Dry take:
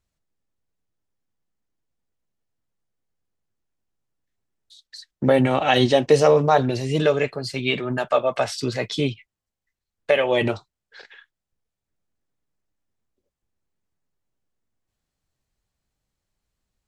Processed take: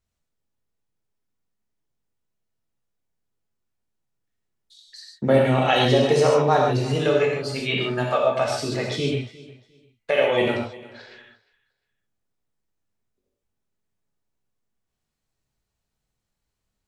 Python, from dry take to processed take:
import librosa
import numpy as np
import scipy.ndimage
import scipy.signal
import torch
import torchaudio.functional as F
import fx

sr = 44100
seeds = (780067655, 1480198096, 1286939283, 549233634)

y = fx.echo_feedback(x, sr, ms=354, feedback_pct=23, wet_db=-20.0)
y = fx.rev_gated(y, sr, seeds[0], gate_ms=170, shape='flat', drr_db=-2.0)
y = y * 10.0 ** (-4.0 / 20.0)